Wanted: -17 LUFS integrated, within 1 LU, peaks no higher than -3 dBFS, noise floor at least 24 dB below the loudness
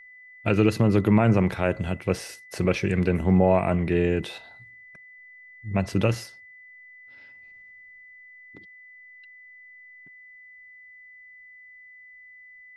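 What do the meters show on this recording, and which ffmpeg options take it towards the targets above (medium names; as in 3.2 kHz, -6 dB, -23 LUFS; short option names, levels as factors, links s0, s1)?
steady tone 2 kHz; tone level -46 dBFS; loudness -23.5 LUFS; peak level -7.0 dBFS; loudness target -17.0 LUFS
-> -af "bandreject=f=2000:w=30"
-af "volume=2.11,alimiter=limit=0.708:level=0:latency=1"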